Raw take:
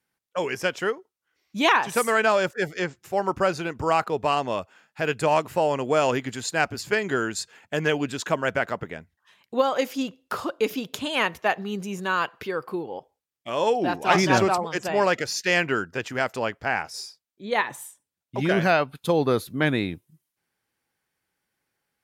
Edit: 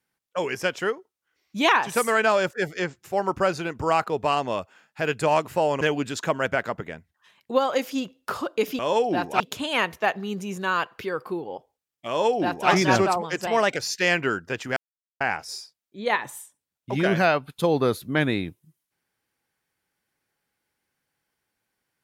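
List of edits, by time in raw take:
5.81–7.84 s: delete
13.50–14.11 s: copy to 10.82 s
14.89–15.22 s: speed 112%
16.22–16.66 s: mute

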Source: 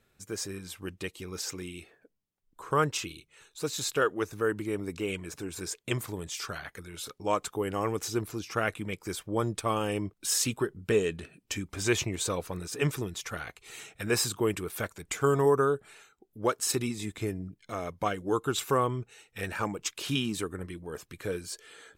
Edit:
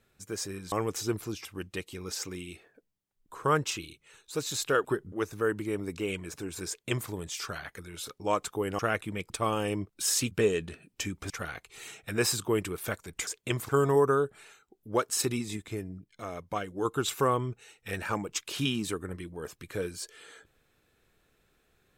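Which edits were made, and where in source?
5.68–6.10 s: copy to 15.19 s
7.79–8.52 s: move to 0.72 s
9.03–9.54 s: delete
10.55–10.82 s: move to 4.12 s
11.81–13.22 s: delete
17.07–18.35 s: gain -3.5 dB

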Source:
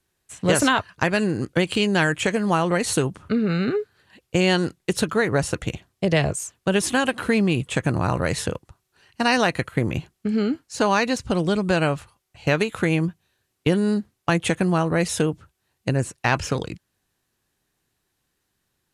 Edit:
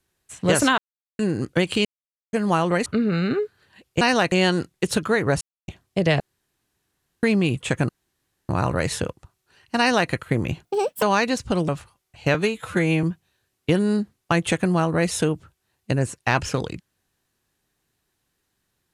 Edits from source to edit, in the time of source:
0.78–1.19 s: mute
1.85–2.33 s: mute
2.86–3.23 s: delete
5.47–5.74 s: mute
6.26–7.29 s: room tone
7.95 s: insert room tone 0.60 s
9.25–9.56 s: copy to 4.38 s
10.11–10.82 s: speed 190%
11.48–11.89 s: delete
12.55–13.01 s: stretch 1.5×

